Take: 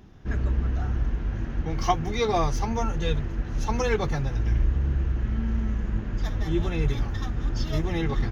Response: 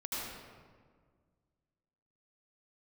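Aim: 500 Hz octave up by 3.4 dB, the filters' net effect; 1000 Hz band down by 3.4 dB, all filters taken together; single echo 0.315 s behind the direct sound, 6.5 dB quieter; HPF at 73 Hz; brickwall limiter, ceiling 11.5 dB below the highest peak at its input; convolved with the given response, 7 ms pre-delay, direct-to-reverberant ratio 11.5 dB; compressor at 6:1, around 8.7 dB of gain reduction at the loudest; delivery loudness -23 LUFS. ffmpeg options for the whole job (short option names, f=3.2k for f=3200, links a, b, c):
-filter_complex "[0:a]highpass=73,equalizer=f=500:t=o:g=6,equalizer=f=1k:t=o:g=-8.5,acompressor=threshold=-27dB:ratio=6,alimiter=level_in=5.5dB:limit=-24dB:level=0:latency=1,volume=-5.5dB,aecho=1:1:315:0.473,asplit=2[a][b];[1:a]atrim=start_sample=2205,adelay=7[c];[b][c]afir=irnorm=-1:irlink=0,volume=-14.5dB[d];[a][d]amix=inputs=2:normalize=0,volume=14dB"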